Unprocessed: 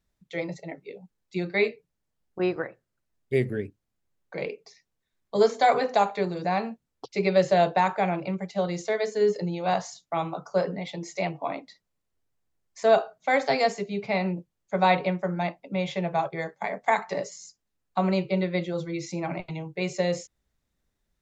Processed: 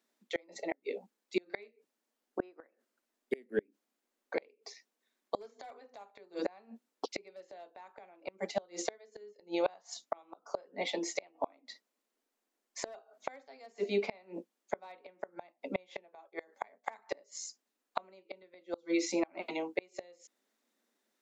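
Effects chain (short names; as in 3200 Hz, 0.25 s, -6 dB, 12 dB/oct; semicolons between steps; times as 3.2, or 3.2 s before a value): elliptic high-pass 230 Hz, stop band 40 dB; overloaded stage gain 13.5 dB; flipped gate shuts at -23 dBFS, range -33 dB; gain +3.5 dB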